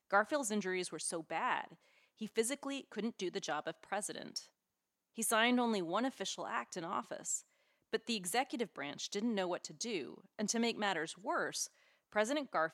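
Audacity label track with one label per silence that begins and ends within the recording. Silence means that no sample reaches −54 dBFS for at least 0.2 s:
1.750000	2.190000	silence
4.460000	5.170000	silence
7.410000	7.930000	silence
11.670000	12.120000	silence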